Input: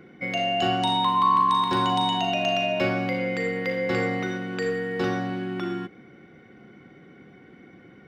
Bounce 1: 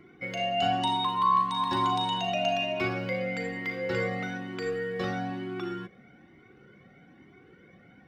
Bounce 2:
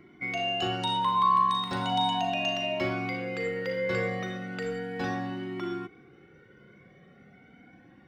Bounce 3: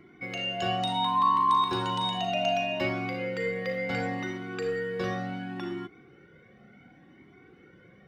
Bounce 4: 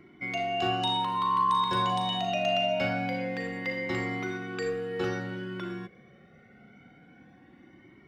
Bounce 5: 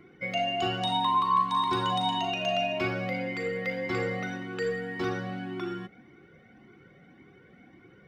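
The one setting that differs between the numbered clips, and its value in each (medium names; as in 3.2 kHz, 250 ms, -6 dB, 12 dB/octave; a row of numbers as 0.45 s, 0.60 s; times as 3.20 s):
Shepard-style flanger, rate: 1.1 Hz, 0.36 Hz, 0.69 Hz, 0.25 Hz, 1.8 Hz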